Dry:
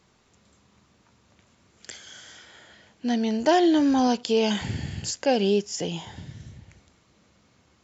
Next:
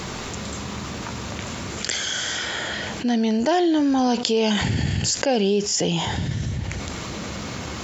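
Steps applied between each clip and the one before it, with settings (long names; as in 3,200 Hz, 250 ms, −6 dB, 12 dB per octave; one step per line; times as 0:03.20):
envelope flattener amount 70%
level −1.5 dB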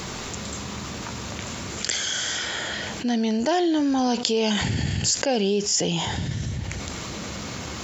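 high-shelf EQ 4,600 Hz +5 dB
level −2.5 dB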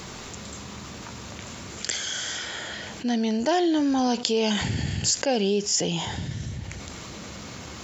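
expander for the loud parts 1.5 to 1, over −31 dBFS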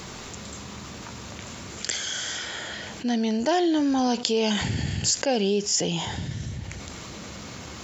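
no processing that can be heard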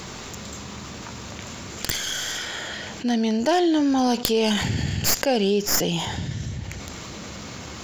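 stylus tracing distortion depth 0.13 ms
level +2.5 dB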